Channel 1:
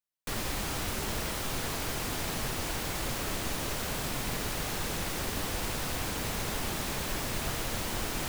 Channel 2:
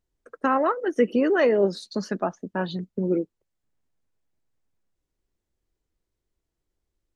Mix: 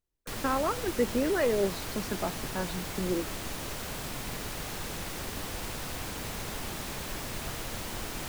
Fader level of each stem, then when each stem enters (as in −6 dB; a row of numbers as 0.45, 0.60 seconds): −3.5, −7.0 decibels; 0.00, 0.00 seconds